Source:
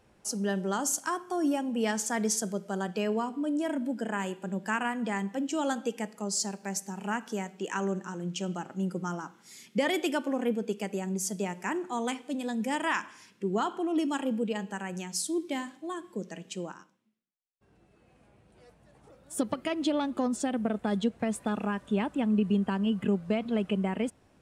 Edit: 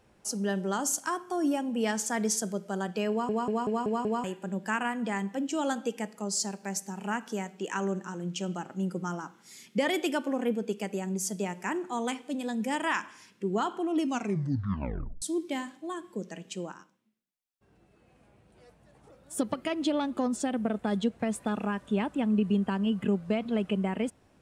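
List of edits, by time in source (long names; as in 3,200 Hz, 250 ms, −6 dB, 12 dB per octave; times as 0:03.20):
0:03.10: stutter in place 0.19 s, 6 plays
0:14.02: tape stop 1.20 s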